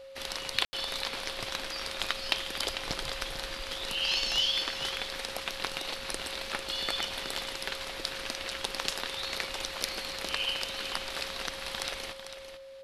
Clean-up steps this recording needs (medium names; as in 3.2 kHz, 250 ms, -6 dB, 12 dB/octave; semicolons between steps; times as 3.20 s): clip repair -10 dBFS; band-stop 540 Hz, Q 30; room tone fill 0.65–0.73 s; inverse comb 447 ms -10 dB